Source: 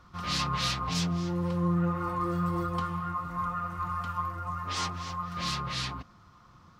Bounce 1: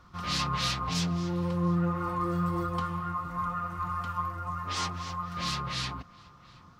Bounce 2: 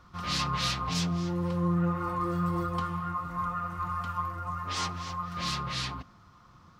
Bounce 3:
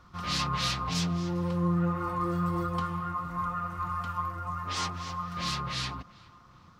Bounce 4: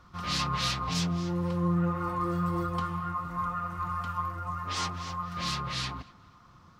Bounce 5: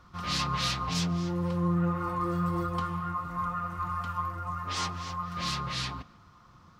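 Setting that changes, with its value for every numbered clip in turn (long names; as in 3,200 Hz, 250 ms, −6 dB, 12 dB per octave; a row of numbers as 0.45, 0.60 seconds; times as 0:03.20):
tape delay, delay time: 718, 76, 400, 236, 146 milliseconds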